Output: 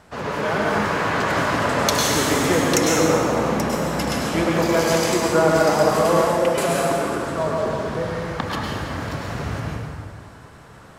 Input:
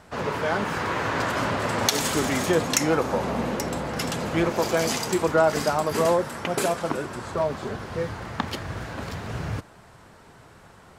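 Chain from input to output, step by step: plate-style reverb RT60 2.2 s, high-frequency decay 0.7×, pre-delay 90 ms, DRR -3.5 dB

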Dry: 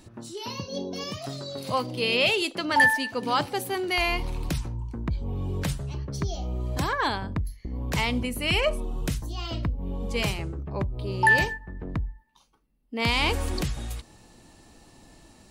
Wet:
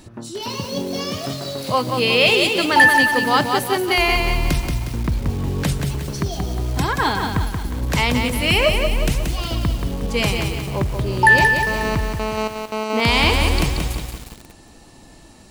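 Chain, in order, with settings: 6.23–7.34 notch comb 580 Hz; 11.67–13 GSM buzz -33 dBFS; lo-fi delay 0.18 s, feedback 55%, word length 7-bit, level -4.5 dB; gain +7 dB

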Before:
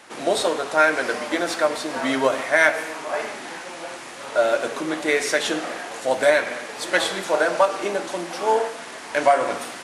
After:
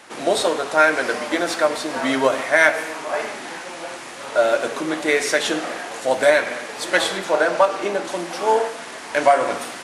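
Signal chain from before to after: 7.17–8.05 high shelf 7000 Hz -6.5 dB; gain +2 dB

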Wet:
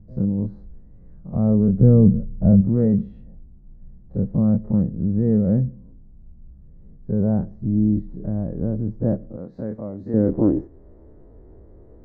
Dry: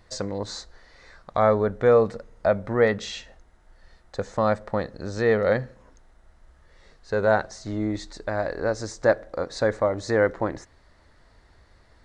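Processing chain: spectral dilation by 60 ms; 1.81–2.61 low shelf 220 Hz +10 dB; low-pass sweep 190 Hz -> 400 Hz, 10.02–10.83; 9.37–10.14 tilt +4 dB/oct; gain +6 dB

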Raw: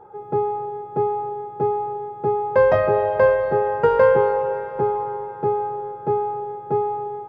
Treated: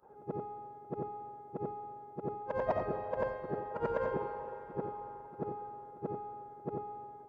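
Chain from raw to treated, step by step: short-time reversal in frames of 0.181 s; harmonic-percussive split harmonic -14 dB; gain -2.5 dB

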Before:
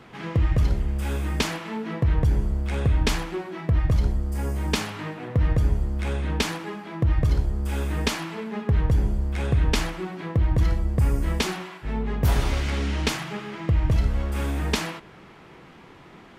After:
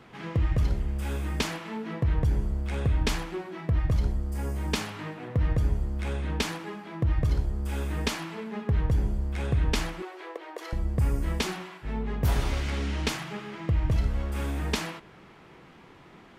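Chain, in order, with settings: 10.02–10.73 steep high-pass 360 Hz 48 dB/oct; gain -4 dB

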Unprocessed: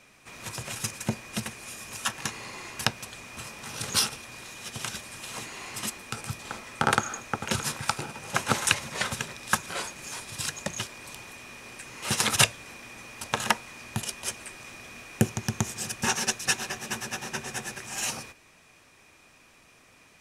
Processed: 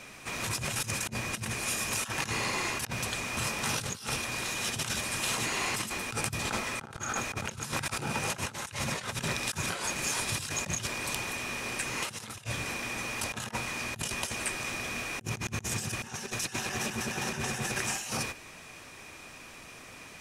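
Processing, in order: dynamic EQ 100 Hz, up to +7 dB, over -46 dBFS, Q 0.7; negative-ratio compressor -39 dBFS, ratio -1; gain +3 dB

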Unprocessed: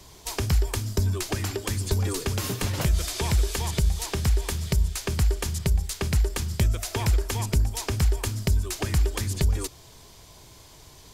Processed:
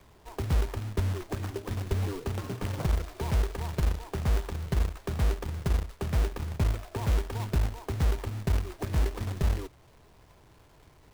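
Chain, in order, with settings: LPF 1200 Hz 12 dB/oct; in parallel at -11.5 dB: crossover distortion -40 dBFS; on the sum: companded quantiser 4-bit; gain -6.5 dB

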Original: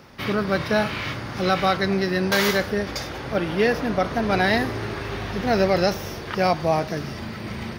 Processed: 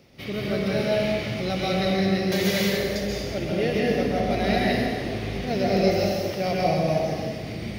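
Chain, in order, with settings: band shelf 1200 Hz -11 dB 1.2 oct; plate-style reverb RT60 1.9 s, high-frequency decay 0.75×, pre-delay 0.115 s, DRR -5 dB; gain -6.5 dB

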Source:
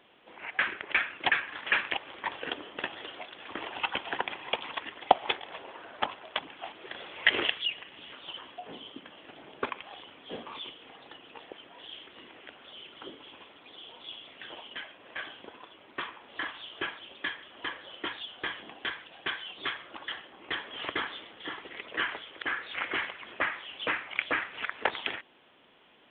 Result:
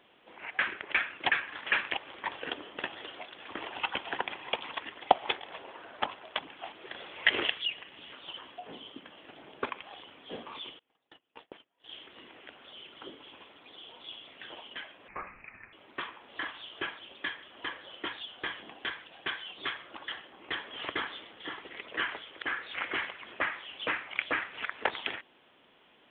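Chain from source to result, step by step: 10.79–11.91 gate -46 dBFS, range -29 dB; 15.08–15.73 inverted band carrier 2800 Hz; gain -1.5 dB

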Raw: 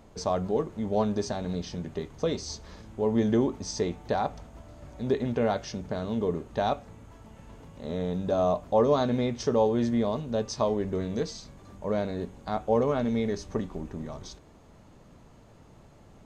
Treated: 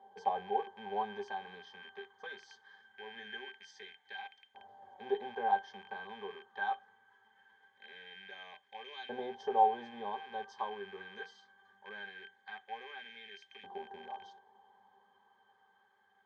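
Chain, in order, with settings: rattling part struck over -39 dBFS, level -28 dBFS; LFO high-pass saw up 0.22 Hz 700–2400 Hz; octave resonator G, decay 0.11 s; gain +7 dB

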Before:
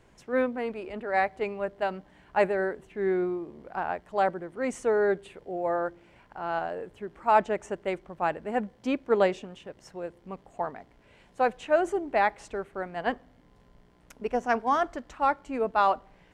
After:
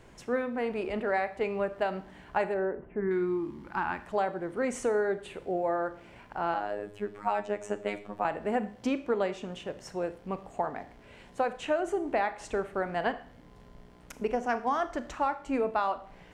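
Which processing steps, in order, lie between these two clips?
3–4.06 spectral gain 370–800 Hz -15 dB; 6.54–8.25 robotiser 103 Hz; compressor 6:1, threshold -31 dBFS, peak gain reduction 13 dB; 2.54–3.11 Gaussian blur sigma 5.3 samples; Schroeder reverb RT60 0.48 s, combs from 26 ms, DRR 11.5 dB; gain +5 dB

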